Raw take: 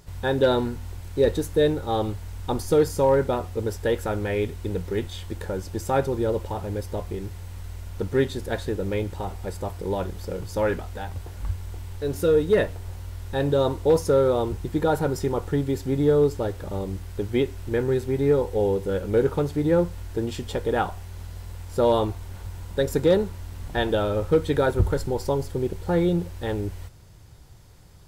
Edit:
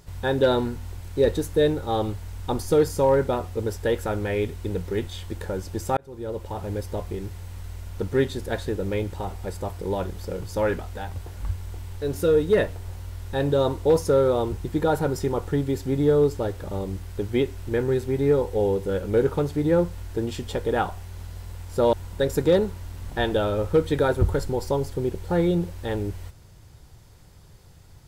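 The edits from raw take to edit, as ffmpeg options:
-filter_complex "[0:a]asplit=3[s0][s1][s2];[s0]atrim=end=5.97,asetpts=PTS-STARTPTS,afade=t=out:st=5.966:d=0.004:c=hsin[s3];[s1]atrim=start=5.97:end=21.932,asetpts=PTS-STARTPTS,afade=t=in:d=0.72[s4];[s2]atrim=start=22.508[s5];[s3][s4]concat=n=2:v=0:a=1[s6];[s6][s5]acrossfade=d=0.004:c1=hsin:c2=hsin"

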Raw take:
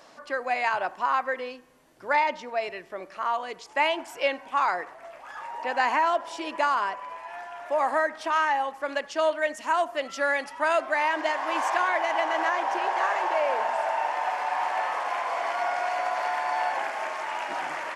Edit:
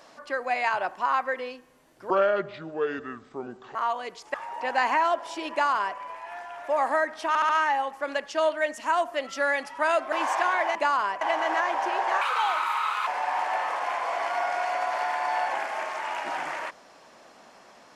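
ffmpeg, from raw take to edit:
-filter_complex "[0:a]asplit=12[s0][s1][s2][s3][s4][s5][s6][s7][s8][s9][s10][s11];[s0]atrim=end=2.104[s12];[s1]atrim=start=2.1:end=3.19,asetpts=PTS-STARTPTS,asetrate=29106,aresample=44100[s13];[s2]atrim=start=3.186:end=3.782[s14];[s3]atrim=start=5.358:end=8.372[s15];[s4]atrim=start=8.298:end=8.372[s16];[s5]atrim=start=8.298:end=8.372[s17];[s6]atrim=start=8.298:end=10.932[s18];[s7]atrim=start=11.468:end=12.102[s19];[s8]atrim=start=6.528:end=6.992[s20];[s9]atrim=start=12.098:end=13.104[s21];[s10]atrim=start=13.1:end=14.31,asetpts=PTS-STARTPTS,asetrate=62181,aresample=44100[s22];[s11]atrim=start=14.306[s23];[s12][s13]acrossfade=d=0.004:c1=hsin:c2=hsin[s24];[s24][s14]acrossfade=d=0.004:c1=hsin:c2=hsin[s25];[s25][s15]acrossfade=d=0.004:c1=hsin:c2=hsin[s26];[s26][s16]acrossfade=d=0.004:c1=hsin:c2=hsin[s27];[s27][s17]acrossfade=d=0.004:c1=hsin:c2=hsin[s28];[s28][s18]acrossfade=d=0.004:c1=hsin:c2=hsin[s29];[s29][s19]acrossfade=d=0.004:c1=hsin:c2=hsin[s30];[s30][s20]acrossfade=d=0.004:c1=hsin:c2=hsin[s31];[s31][s21]acrossfade=d=0.004:c1=hsin:c2=hsin[s32];[s32][s22]acrossfade=d=0.004:c1=hsin:c2=hsin[s33];[s33][s23]acrossfade=d=0.004:c1=hsin:c2=hsin"

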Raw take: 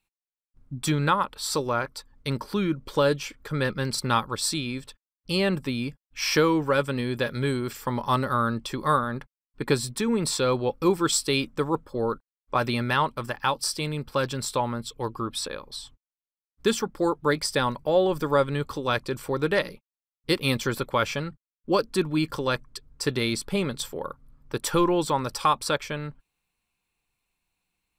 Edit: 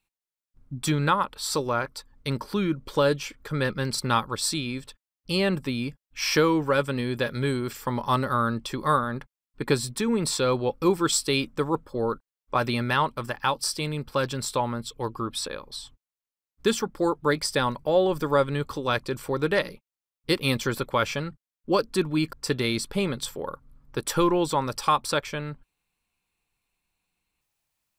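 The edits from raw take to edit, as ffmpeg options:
-filter_complex "[0:a]asplit=2[s0][s1];[s0]atrim=end=22.332[s2];[s1]atrim=start=22.898[s3];[s2][s3]acrossfade=d=0.004:c1=hsin:c2=hsin"

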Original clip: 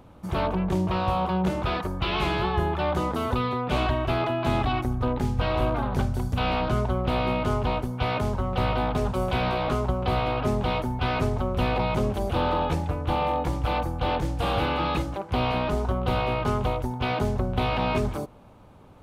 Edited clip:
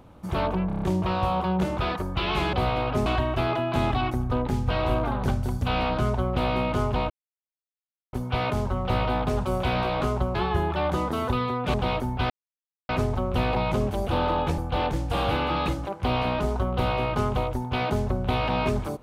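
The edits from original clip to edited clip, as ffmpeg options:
-filter_complex "[0:a]asplit=13[s0][s1][s2][s3][s4][s5][s6][s7][s8][s9][s10][s11][s12];[s0]atrim=end=0.702[s13];[s1]atrim=start=0.668:end=0.702[s14];[s2]atrim=start=0.668:end=0.702[s15];[s3]atrim=start=0.668:end=0.702[s16];[s4]atrim=start=0.668:end=0.702[s17];[s5]atrim=start=0.668:end=2.382[s18];[s6]atrim=start=10.028:end=10.562[s19];[s7]atrim=start=3.768:end=7.81,asetpts=PTS-STARTPTS,afade=t=out:st=4.038:d=0.004:c=hsin,apad=pad_dur=1.03[s20];[s8]atrim=start=7.81:end=10.032,asetpts=PTS-STARTPTS,afade=t=in:d=0.004:c=hsin[s21];[s9]atrim=start=2.378:end=3.772[s22];[s10]atrim=start=10.558:end=11.12,asetpts=PTS-STARTPTS,afade=t=out:st=0.558:d=0.004:c=hsin,apad=pad_dur=0.59[s23];[s11]atrim=start=11.12:end=12.812,asetpts=PTS-STARTPTS,afade=t=in:d=0.004:c=hsin[s24];[s12]atrim=start=13.868[s25];[s13][s14]acrossfade=d=0.004:c1=hsin:c2=hsin[s26];[s26][s15]acrossfade=d=0.004:c1=hsin:c2=hsin[s27];[s27][s16]acrossfade=d=0.004:c1=hsin:c2=hsin[s28];[s28][s17]acrossfade=d=0.004:c1=hsin:c2=hsin[s29];[s29][s18]acrossfade=d=0.004:c1=hsin:c2=hsin[s30];[s30][s19]acrossfade=d=0.004:c1=hsin:c2=hsin[s31];[s20][s21]concat=n=2:v=0:a=1[s32];[s31][s32]acrossfade=d=0.004:c1=hsin:c2=hsin[s33];[s33][s22]acrossfade=d=0.004:c1=hsin:c2=hsin[s34];[s23][s24]concat=n=2:v=0:a=1[s35];[s34][s35]acrossfade=d=0.004:c1=hsin:c2=hsin[s36];[s36][s25]acrossfade=d=0.004:c1=hsin:c2=hsin"

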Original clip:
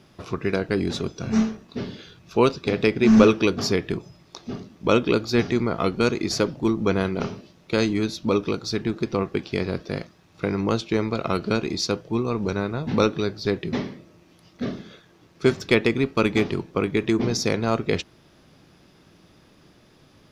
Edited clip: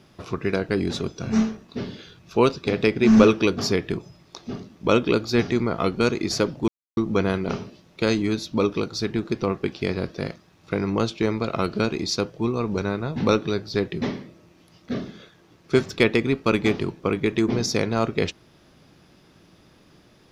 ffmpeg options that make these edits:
-filter_complex "[0:a]asplit=2[s0][s1];[s0]atrim=end=6.68,asetpts=PTS-STARTPTS,afade=t=out:st=6.676:d=0.004:c=hsin,apad=pad_dur=0.29[s2];[s1]atrim=start=6.68,asetpts=PTS-STARTPTS,afade=t=in:d=0.004:c=hsin[s3];[s2][s3]concat=n=2:v=0:a=1"

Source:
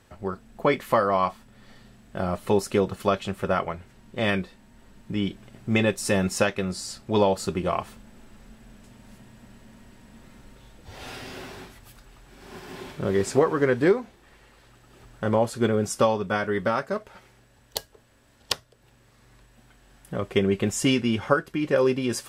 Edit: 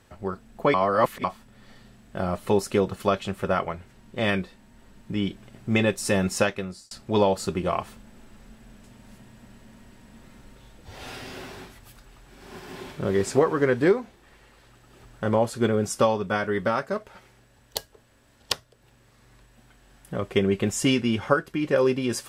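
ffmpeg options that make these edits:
-filter_complex "[0:a]asplit=4[s0][s1][s2][s3];[s0]atrim=end=0.742[s4];[s1]atrim=start=0.738:end=1.242,asetpts=PTS-STARTPTS,areverse[s5];[s2]atrim=start=1.238:end=6.91,asetpts=PTS-STARTPTS,afade=t=out:st=5.212:d=0.46[s6];[s3]atrim=start=6.91,asetpts=PTS-STARTPTS,afade=t=in:d=0.004:c=hsin[s7];[s4][s5]acrossfade=d=0.004:c1=hsin:c2=hsin[s8];[s6][s7]concat=n=2:v=0:a=1[s9];[s8][s9]acrossfade=d=0.004:c1=hsin:c2=hsin"

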